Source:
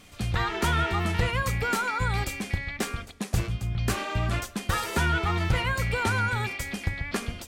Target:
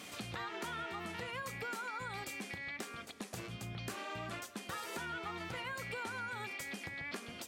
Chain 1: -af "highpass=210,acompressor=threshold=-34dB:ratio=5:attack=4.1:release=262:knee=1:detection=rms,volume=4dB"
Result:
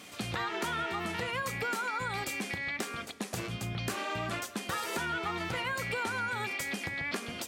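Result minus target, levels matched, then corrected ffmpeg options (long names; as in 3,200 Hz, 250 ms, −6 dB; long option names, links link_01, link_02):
downward compressor: peak gain reduction −8 dB
-af "highpass=210,acompressor=threshold=-44dB:ratio=5:attack=4.1:release=262:knee=1:detection=rms,volume=4dB"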